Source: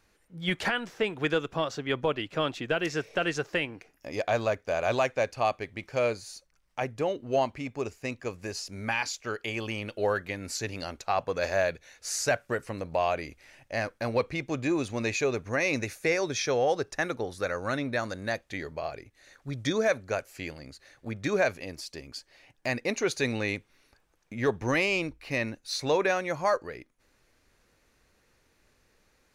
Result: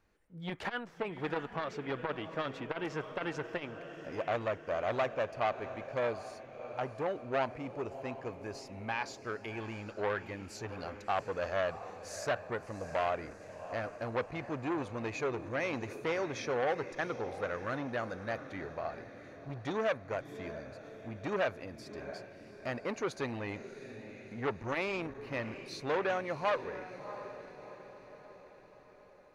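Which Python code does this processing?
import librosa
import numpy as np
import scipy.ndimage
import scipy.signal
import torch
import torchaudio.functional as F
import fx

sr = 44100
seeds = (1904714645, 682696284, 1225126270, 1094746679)

p1 = fx.high_shelf(x, sr, hz=2700.0, db=-11.5)
p2 = p1 + fx.echo_diffused(p1, sr, ms=691, feedback_pct=55, wet_db=-13.0, dry=0)
p3 = fx.dynamic_eq(p2, sr, hz=1100.0, q=0.97, threshold_db=-44.0, ratio=4.0, max_db=4)
p4 = fx.transformer_sat(p3, sr, knee_hz=1200.0)
y = p4 * 10.0 ** (-4.5 / 20.0)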